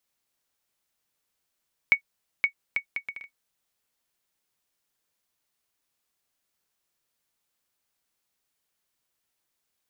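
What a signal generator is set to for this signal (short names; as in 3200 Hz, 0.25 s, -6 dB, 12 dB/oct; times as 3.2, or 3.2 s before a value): bouncing ball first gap 0.52 s, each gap 0.62, 2230 Hz, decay 92 ms -8 dBFS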